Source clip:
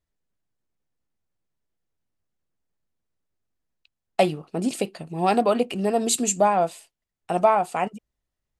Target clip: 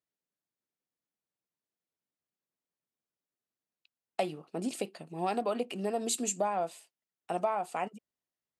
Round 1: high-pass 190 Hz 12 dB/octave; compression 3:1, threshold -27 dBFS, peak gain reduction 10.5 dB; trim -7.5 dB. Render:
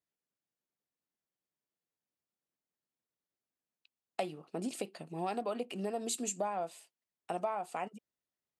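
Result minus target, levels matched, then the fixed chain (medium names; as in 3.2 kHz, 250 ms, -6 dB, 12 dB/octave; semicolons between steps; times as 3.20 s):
compression: peak gain reduction +4.5 dB
high-pass 190 Hz 12 dB/octave; compression 3:1, threshold -20 dBFS, peak gain reduction 6 dB; trim -7.5 dB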